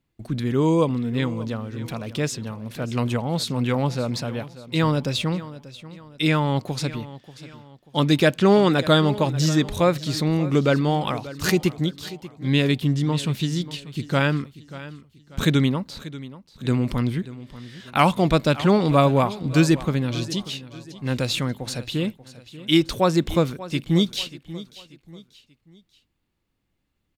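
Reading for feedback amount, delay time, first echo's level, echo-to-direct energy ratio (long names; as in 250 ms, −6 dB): 39%, 587 ms, −16.5 dB, −16.0 dB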